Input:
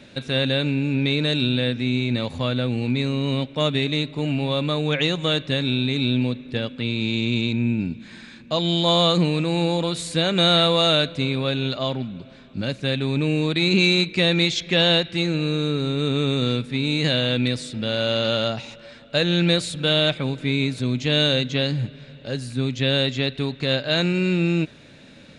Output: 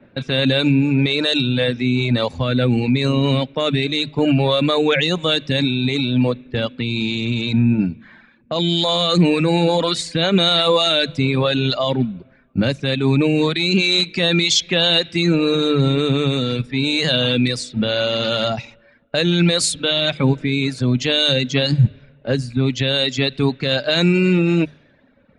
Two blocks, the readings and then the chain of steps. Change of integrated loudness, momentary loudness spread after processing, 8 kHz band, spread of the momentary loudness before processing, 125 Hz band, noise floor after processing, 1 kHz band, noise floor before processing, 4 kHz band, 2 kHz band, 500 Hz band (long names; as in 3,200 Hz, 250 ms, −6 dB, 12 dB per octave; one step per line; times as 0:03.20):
+4.0 dB, 6 LU, +8.5 dB, 9 LU, +4.0 dB, −53 dBFS, +4.0 dB, −46 dBFS, +3.5 dB, +3.5 dB, +4.0 dB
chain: mains-hum notches 50/100/150 Hz
reverb reduction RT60 1.3 s
low-pass that shuts in the quiet parts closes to 1,600 Hz, open at −21.5 dBFS
boost into a limiter +19.5 dB
multiband upward and downward expander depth 70%
level −7 dB